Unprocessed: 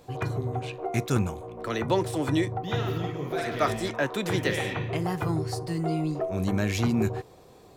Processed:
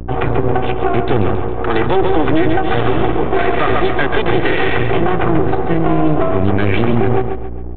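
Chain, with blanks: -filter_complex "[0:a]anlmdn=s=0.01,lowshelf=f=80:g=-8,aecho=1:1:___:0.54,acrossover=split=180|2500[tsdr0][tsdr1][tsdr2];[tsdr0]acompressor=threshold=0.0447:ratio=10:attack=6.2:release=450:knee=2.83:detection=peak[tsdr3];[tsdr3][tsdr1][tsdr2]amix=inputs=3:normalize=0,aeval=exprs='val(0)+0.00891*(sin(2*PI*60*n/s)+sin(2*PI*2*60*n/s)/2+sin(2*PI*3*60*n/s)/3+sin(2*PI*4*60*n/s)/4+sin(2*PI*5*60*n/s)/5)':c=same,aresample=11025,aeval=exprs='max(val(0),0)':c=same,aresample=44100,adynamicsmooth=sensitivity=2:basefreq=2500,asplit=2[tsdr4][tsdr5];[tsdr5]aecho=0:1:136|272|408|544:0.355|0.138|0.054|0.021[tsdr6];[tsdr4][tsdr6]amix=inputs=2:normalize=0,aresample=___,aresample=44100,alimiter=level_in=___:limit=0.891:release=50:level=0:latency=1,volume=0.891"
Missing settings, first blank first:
2.6, 8000, 10.6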